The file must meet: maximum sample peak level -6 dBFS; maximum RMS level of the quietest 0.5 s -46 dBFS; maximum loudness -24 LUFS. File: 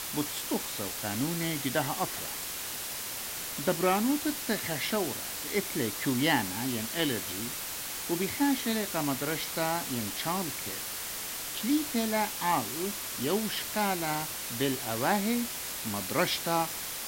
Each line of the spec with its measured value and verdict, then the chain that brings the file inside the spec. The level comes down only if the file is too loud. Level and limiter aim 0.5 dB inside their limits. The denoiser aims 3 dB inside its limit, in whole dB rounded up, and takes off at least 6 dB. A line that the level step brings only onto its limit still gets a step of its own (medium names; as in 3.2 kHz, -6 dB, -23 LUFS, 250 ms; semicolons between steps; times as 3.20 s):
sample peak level -13.5 dBFS: pass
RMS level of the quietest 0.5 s -37 dBFS: fail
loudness -30.5 LUFS: pass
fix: noise reduction 12 dB, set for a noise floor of -37 dBFS